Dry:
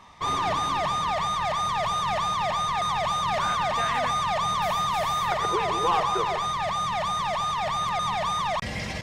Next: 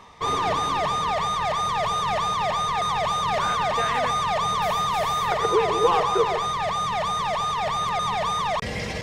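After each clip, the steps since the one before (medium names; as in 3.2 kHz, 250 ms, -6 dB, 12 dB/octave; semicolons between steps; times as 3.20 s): peaking EQ 450 Hz +10.5 dB 0.33 oct; reverse; upward compressor, threshold -34 dBFS; reverse; trim +1.5 dB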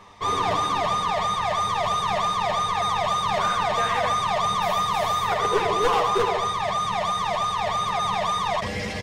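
one-sided wavefolder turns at -16 dBFS; on a send: early reflections 10 ms -3.5 dB, 79 ms -7 dB; on the sum: trim -2 dB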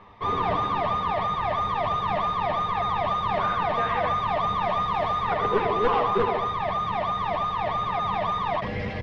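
octave divider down 1 oct, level -5 dB; distance through air 340 m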